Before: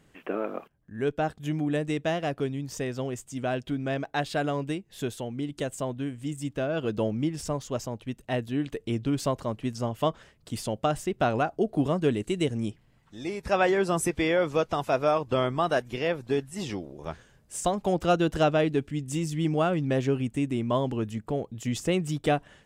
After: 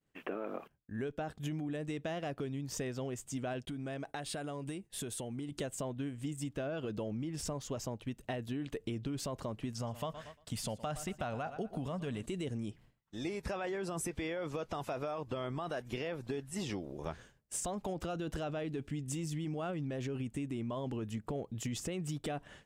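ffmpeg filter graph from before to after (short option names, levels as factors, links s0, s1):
-filter_complex "[0:a]asettb=1/sr,asplit=3[s0][s1][s2];[s0]atrim=end=3.654[s3];[s1]atrim=start=3.65:end=5.52,asetpts=PTS-STARTPTS,afade=t=in:d=0.004:c=qsin,afade=t=out:st=1.866:d=0.004:c=qsin,equalizer=f=9200:w=2.6:g=12.5,acompressor=threshold=0.0158:ratio=6:attack=3.2:release=140:knee=1:detection=peak,agate=range=0.0224:threshold=0.00141:ratio=3:release=100:detection=peak[s4];[s2]atrim=start=5.516[s5];[s3][s4]acrossfade=d=0.004:c1=hsin:c2=qsin[s6];[s6][s5]acrossfade=d=0.004:c1=qsin:c2=hsin,asettb=1/sr,asplit=3[s7][s8][s9];[s7]atrim=end=9.744[s10];[s8]atrim=start=9.74:end=12.26,asetpts=PTS-STARTPTS,afade=t=in:d=0.004:c=qsin,afade=t=out:st=2.516:d=0.004:c=qsin,equalizer=f=350:t=o:w=0.6:g=-11,aecho=1:1:116|232|348:0.112|0.0494|0.0217,atrim=end_sample=111132[s11];[s9]atrim=start=12.256[s12];[s10][s11]acrossfade=d=0.004:c1=hsin:c2=qsin[s13];[s13][s12]acrossfade=d=0.004:c1=qsin:c2=hsin,agate=range=0.0224:threshold=0.00398:ratio=3:detection=peak,alimiter=limit=0.0708:level=0:latency=1:release=15,acompressor=threshold=0.0178:ratio=6"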